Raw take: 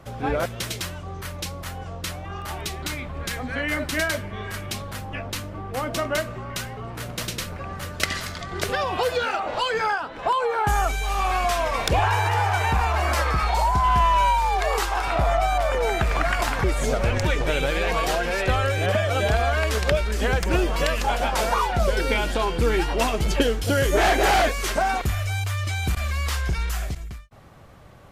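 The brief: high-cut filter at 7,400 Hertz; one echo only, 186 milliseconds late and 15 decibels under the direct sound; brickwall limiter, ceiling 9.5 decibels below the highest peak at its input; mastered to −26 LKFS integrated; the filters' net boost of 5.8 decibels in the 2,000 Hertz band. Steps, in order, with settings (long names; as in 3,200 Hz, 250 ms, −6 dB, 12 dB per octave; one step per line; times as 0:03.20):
low-pass filter 7,400 Hz
parametric band 2,000 Hz +7.5 dB
brickwall limiter −12.5 dBFS
single-tap delay 186 ms −15 dB
level −3 dB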